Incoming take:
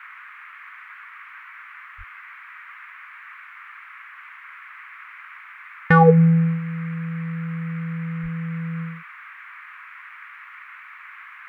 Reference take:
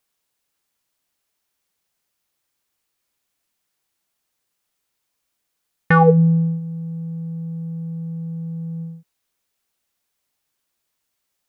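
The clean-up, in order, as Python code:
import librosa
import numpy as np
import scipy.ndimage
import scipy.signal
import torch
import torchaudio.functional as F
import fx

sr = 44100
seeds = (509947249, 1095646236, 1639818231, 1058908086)

y = fx.fix_deplosive(x, sr, at_s=(1.97, 8.22))
y = fx.noise_reduce(y, sr, print_start_s=3.94, print_end_s=4.44, reduce_db=30.0)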